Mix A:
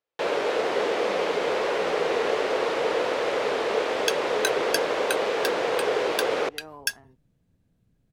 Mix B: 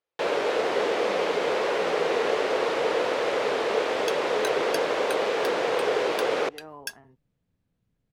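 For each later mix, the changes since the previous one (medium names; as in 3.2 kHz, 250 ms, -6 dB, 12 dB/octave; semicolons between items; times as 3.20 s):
second sound -8.0 dB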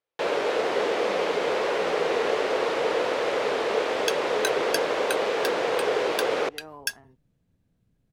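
second sound +6.0 dB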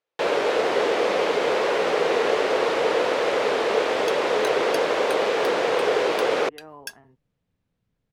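first sound +4.0 dB; second sound -7.0 dB; reverb: off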